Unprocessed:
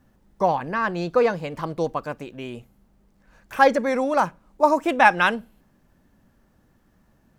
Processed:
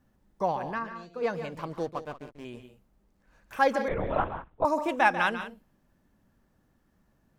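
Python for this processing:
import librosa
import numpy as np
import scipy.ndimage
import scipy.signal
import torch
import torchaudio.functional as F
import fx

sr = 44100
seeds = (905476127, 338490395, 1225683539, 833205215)

y = fx.comb_fb(x, sr, f0_hz=230.0, decay_s=0.18, harmonics='all', damping=0.0, mix_pct=90, at=(0.78, 1.22), fade=0.02)
y = fx.backlash(y, sr, play_db=-30.0, at=(1.79, 2.45))
y = fx.echo_multitap(y, sr, ms=(143, 183), db=(-11.0, -15.0))
y = fx.lpc_vocoder(y, sr, seeds[0], excitation='whisper', order=10, at=(3.88, 4.65))
y = y * 10.0 ** (-7.5 / 20.0)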